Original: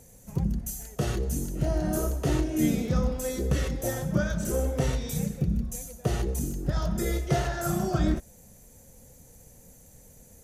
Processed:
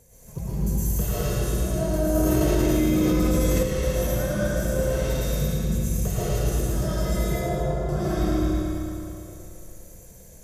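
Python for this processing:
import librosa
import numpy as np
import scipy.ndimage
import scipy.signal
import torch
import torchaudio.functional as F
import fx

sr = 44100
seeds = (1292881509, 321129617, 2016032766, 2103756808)

y = x + 0.35 * np.pad(x, (int(1.9 * sr / 1000.0), 0))[:len(x)]
y = fx.echo_feedback(y, sr, ms=113, feedback_pct=59, wet_db=-4)
y = fx.rider(y, sr, range_db=4, speed_s=0.5)
y = fx.lowpass(y, sr, hz=1000.0, slope=24, at=(7.23, 7.89))
y = fx.rev_freeverb(y, sr, rt60_s=2.7, hf_ratio=0.9, predelay_ms=75, drr_db=-9.5)
y = fx.env_flatten(y, sr, amount_pct=100, at=(2.15, 3.63))
y = y * librosa.db_to_amplitude(-8.0)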